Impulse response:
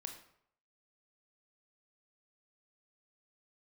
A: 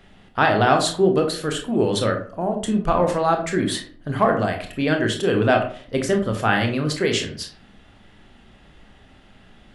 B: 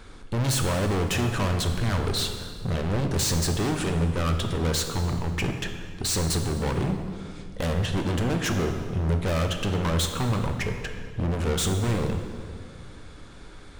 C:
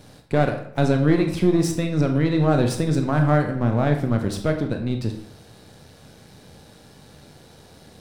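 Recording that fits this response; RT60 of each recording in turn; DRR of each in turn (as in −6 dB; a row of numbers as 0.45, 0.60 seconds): C; 0.50, 2.1, 0.70 seconds; 3.0, 4.5, 4.5 decibels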